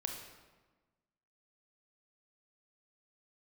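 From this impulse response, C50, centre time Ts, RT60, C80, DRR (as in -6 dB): 4.5 dB, 40 ms, 1.3 s, 6.5 dB, 2.5 dB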